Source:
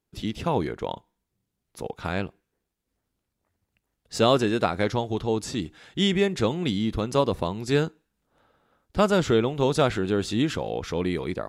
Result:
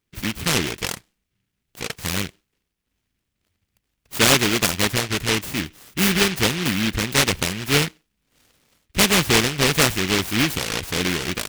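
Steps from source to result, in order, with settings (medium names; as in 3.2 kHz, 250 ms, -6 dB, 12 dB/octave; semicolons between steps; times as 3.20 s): delay time shaken by noise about 2.3 kHz, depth 0.42 ms; trim +3.5 dB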